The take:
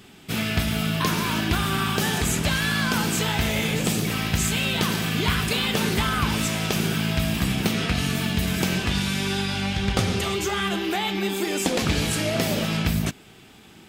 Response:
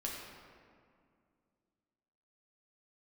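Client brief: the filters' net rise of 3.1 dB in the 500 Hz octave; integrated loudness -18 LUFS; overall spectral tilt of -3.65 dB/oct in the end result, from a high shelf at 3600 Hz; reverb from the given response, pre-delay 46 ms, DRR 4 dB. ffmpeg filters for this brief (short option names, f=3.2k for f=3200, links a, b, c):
-filter_complex "[0:a]equalizer=f=500:t=o:g=4,highshelf=f=3.6k:g=7.5,asplit=2[a][b];[1:a]atrim=start_sample=2205,adelay=46[c];[b][c]afir=irnorm=-1:irlink=0,volume=-5.5dB[d];[a][d]amix=inputs=2:normalize=0,volume=1.5dB"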